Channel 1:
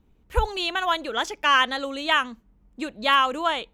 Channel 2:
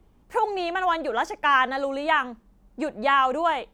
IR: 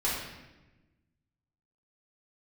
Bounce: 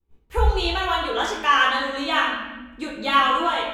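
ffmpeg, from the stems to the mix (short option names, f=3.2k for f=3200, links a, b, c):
-filter_complex "[0:a]volume=0.5dB,asplit=2[a][b];[b]volume=-5.5dB[c];[1:a]volume=-12dB,asplit=2[d][e];[e]apad=whole_len=164814[f];[a][f]sidechaincompress=threshold=-37dB:ratio=8:attack=16:release=280[g];[2:a]atrim=start_sample=2205[h];[c][h]afir=irnorm=-1:irlink=0[i];[g][d][i]amix=inputs=3:normalize=0,agate=range=-33dB:threshold=-43dB:ratio=3:detection=peak,flanger=delay=16.5:depth=2.2:speed=1.1"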